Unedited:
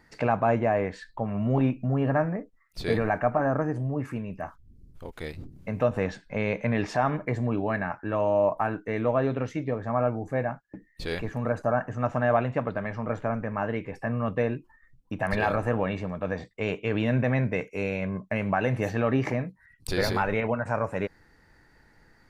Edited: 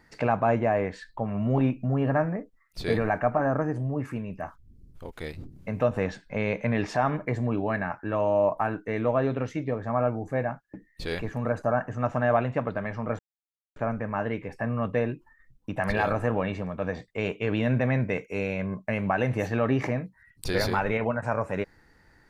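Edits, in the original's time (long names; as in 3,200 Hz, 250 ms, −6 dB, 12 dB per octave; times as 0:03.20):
0:13.19: splice in silence 0.57 s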